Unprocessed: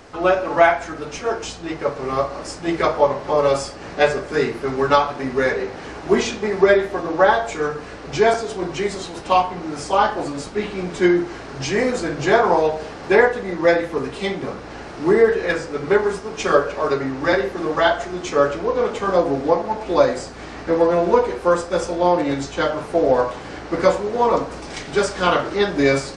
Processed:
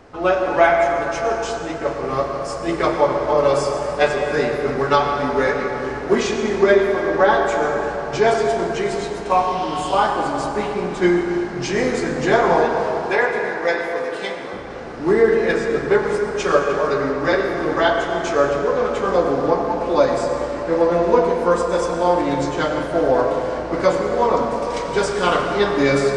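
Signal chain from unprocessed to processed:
0:09.31–0:09.98: healed spectral selection 2,600–6,300 Hz both
0:12.65–0:14.53: high-pass filter 770 Hz 6 dB per octave
dense smooth reverb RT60 4.2 s, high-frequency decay 0.4×, pre-delay 80 ms, DRR 3 dB
one half of a high-frequency compander decoder only
level −1 dB

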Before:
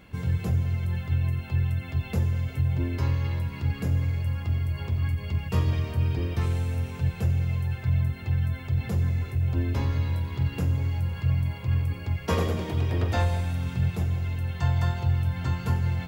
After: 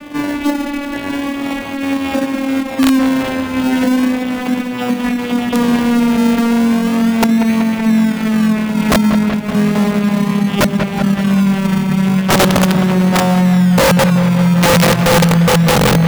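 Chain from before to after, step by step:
vocoder with a gliding carrier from D4, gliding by −10 semitones
low-pass filter 5,400 Hz 12 dB per octave
parametric band 370 Hz −10 dB 0.95 octaves
in parallel at −3 dB: sample-and-hold swept by an LFO 30×, swing 60% 0.36 Hz
on the sum: wrap-around overflow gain 19.5 dB
on a send: delay with a low-pass on its return 189 ms, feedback 60%, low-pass 3,400 Hz, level −14.5 dB
on the sum: boost into a limiter +27 dB
level −4.5 dB

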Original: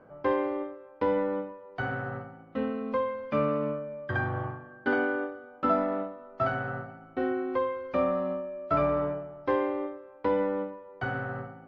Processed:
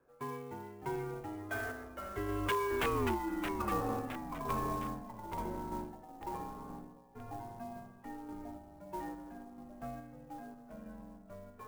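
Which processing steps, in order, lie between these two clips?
spectral magnitudes quantised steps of 15 dB
source passing by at 0:03.10, 53 m/s, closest 9.4 metres
low-shelf EQ 420 Hz −12 dB
downward compressor 10 to 1, threshold −46 dBFS, peak gain reduction 15.5 dB
sample-and-hold tremolo, depth 55%
wrap-around overflow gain 42 dB
delay with pitch and tempo change per echo 277 ms, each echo −2 semitones, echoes 3, each echo −6 dB
single-sideband voice off tune −210 Hz 190–3,500 Hz
converter with an unsteady clock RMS 0.022 ms
level +18 dB

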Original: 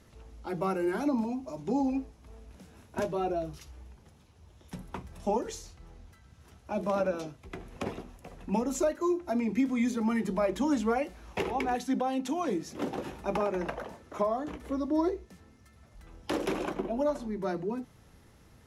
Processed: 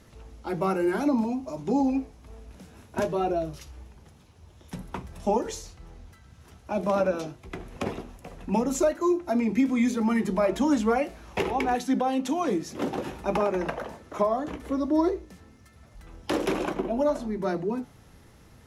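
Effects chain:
flanger 1.2 Hz, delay 6.1 ms, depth 3.1 ms, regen −89%
level +9 dB

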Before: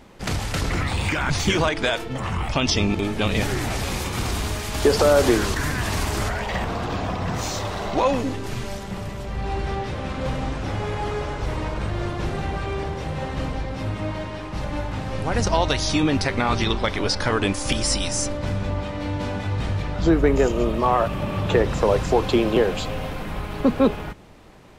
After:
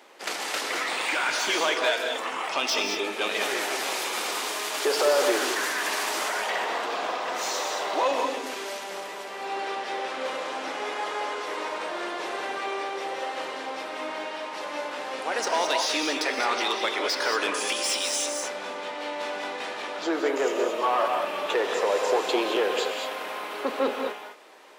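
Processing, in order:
spectral tilt +2.5 dB per octave
soft clipping −17 dBFS, distortion −12 dB
high-pass filter 340 Hz 24 dB per octave
high-shelf EQ 4,300 Hz −9.5 dB
reverb whose tail is shaped and stops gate 240 ms rising, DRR 3.5 dB

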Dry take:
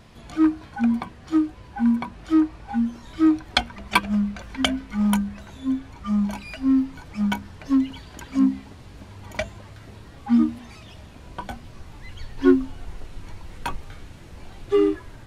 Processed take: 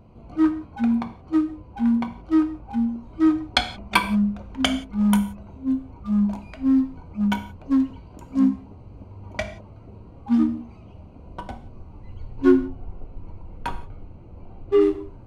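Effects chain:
adaptive Wiener filter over 25 samples
0:12.52–0:14.81: high-shelf EQ 5,100 Hz −8 dB
reverb whose tail is shaped and stops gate 200 ms falling, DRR 6.5 dB

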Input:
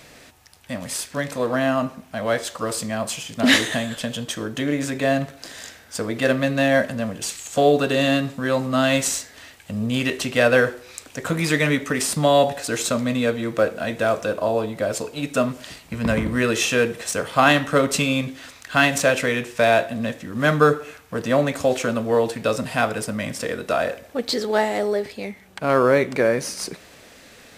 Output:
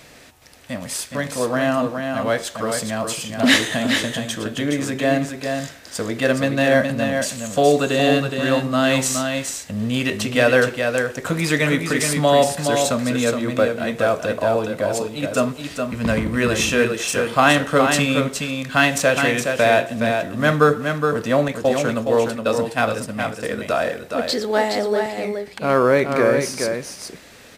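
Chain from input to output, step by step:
0:21.48–0:23.43: downward expander −22 dBFS
single-tap delay 418 ms −5.5 dB
level +1 dB

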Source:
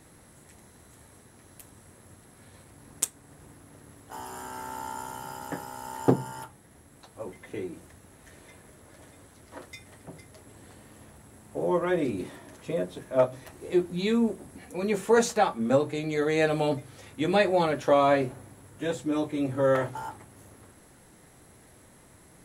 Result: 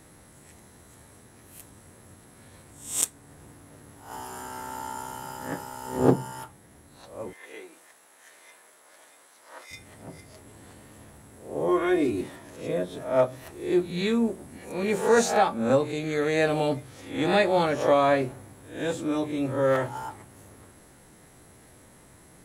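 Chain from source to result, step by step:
peak hold with a rise ahead of every peak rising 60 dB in 0.47 s
0:07.33–0:09.71: high-pass filter 700 Hz 12 dB per octave
0:11.68–0:12.21: comb filter 2.8 ms, depth 68%

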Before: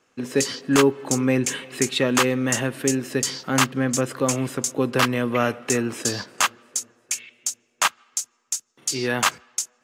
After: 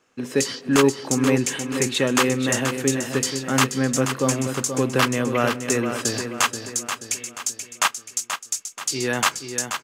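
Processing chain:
repeating echo 481 ms, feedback 45%, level −8 dB

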